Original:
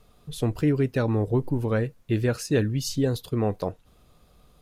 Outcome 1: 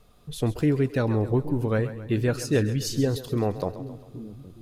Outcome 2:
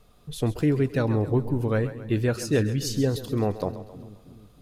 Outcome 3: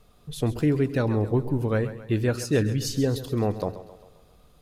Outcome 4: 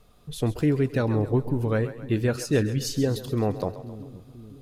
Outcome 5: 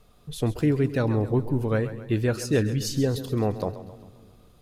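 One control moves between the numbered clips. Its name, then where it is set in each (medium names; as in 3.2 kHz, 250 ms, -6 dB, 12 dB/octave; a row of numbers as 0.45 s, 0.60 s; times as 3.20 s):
two-band feedback delay, lows: 817 ms, 318 ms, 92 ms, 508 ms, 200 ms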